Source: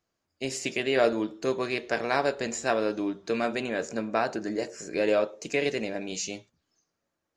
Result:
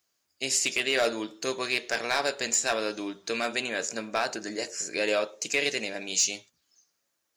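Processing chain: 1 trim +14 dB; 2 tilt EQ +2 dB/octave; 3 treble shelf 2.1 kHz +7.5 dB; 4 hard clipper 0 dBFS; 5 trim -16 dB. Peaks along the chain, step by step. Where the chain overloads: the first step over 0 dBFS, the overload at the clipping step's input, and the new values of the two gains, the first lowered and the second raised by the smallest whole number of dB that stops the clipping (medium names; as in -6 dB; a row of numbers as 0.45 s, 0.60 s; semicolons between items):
+4.5 dBFS, +5.5 dBFS, +8.0 dBFS, 0.0 dBFS, -16.0 dBFS; step 1, 8.0 dB; step 1 +6 dB, step 5 -8 dB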